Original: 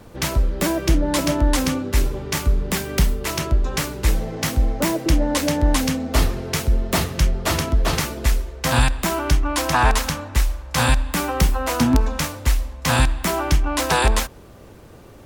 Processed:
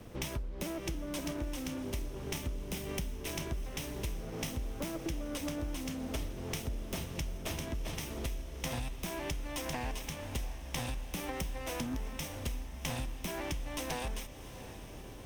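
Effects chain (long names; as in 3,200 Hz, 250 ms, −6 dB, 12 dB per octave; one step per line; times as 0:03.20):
lower of the sound and its delayed copy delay 0.33 ms
downward compressor 10 to 1, threshold −29 dBFS, peak gain reduction 17.5 dB
on a send: feedback delay with all-pass diffusion 700 ms, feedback 65%, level −13.5 dB
on the sum: level −5.5 dB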